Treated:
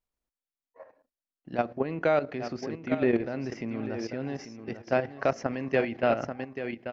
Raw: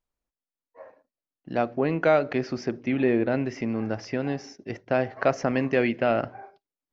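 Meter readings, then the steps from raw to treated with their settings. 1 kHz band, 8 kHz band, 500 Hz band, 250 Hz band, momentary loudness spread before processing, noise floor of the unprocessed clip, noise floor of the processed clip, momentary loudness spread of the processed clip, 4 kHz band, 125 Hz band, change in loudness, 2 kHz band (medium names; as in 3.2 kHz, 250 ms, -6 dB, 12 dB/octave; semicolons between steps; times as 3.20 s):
-3.0 dB, no reading, -3.0 dB, -4.5 dB, 9 LU, under -85 dBFS, under -85 dBFS, 10 LU, -3.5 dB, -5.0 dB, -4.0 dB, -4.0 dB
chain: feedback delay 840 ms, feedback 16%, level -9 dB; level held to a coarse grid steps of 11 dB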